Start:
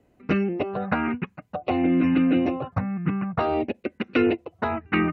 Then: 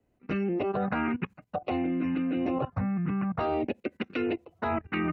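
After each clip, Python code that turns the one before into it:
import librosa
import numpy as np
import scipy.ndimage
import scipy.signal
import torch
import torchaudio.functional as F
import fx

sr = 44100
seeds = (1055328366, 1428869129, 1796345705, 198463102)

y = fx.level_steps(x, sr, step_db=16)
y = fx.band_widen(y, sr, depth_pct=40)
y = F.gain(torch.from_numpy(y), 4.0).numpy()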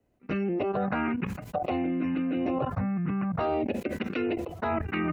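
y = fx.peak_eq(x, sr, hz=600.0, db=2.5, octaves=0.37)
y = fx.sustainer(y, sr, db_per_s=62.0)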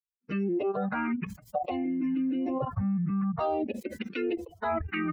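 y = fx.bin_expand(x, sr, power=2.0)
y = F.gain(torch.from_numpy(y), 2.5).numpy()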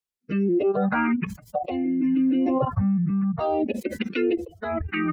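y = fx.rotary(x, sr, hz=0.7)
y = F.gain(torch.from_numpy(y), 8.0).numpy()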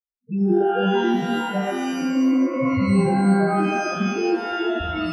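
y = fx.reverse_delay(x, sr, ms=407, wet_db=-3.0)
y = fx.spec_topn(y, sr, count=4)
y = fx.rev_shimmer(y, sr, seeds[0], rt60_s=1.0, semitones=12, shimmer_db=-2, drr_db=5.0)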